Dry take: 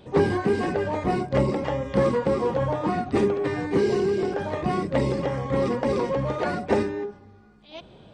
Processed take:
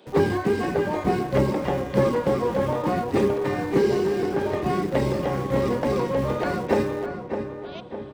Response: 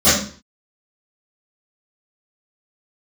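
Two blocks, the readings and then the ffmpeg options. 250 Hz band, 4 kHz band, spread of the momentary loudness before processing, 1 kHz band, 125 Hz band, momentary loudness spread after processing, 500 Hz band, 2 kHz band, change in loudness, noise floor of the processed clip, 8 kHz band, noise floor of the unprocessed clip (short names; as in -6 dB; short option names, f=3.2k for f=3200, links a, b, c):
+1.0 dB, +1.0 dB, 5 LU, +1.0 dB, +0.5 dB, 8 LU, +1.0 dB, +1.0 dB, +0.5 dB, -36 dBFS, n/a, -50 dBFS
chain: -filter_complex "[0:a]acrossover=split=220|1700[a][b][c];[a]acrusher=bits=6:mix=0:aa=0.000001[d];[d][b][c]amix=inputs=3:normalize=0,asplit=2[e][f];[f]adelay=608,lowpass=f=2.2k:p=1,volume=-7.5dB,asplit=2[g][h];[h]adelay=608,lowpass=f=2.2k:p=1,volume=0.52,asplit=2[i][j];[j]adelay=608,lowpass=f=2.2k:p=1,volume=0.52,asplit=2[k][l];[l]adelay=608,lowpass=f=2.2k:p=1,volume=0.52,asplit=2[m][n];[n]adelay=608,lowpass=f=2.2k:p=1,volume=0.52,asplit=2[o][p];[p]adelay=608,lowpass=f=2.2k:p=1,volume=0.52[q];[e][g][i][k][m][o][q]amix=inputs=7:normalize=0"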